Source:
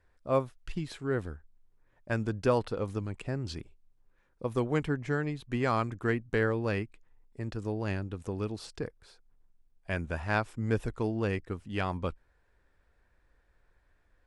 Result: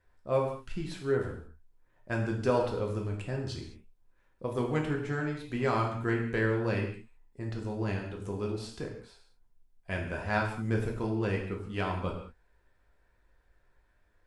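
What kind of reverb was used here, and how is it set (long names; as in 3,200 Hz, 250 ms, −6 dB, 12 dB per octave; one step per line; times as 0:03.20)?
reverb whose tail is shaped and stops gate 240 ms falling, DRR −0.5 dB
level −3 dB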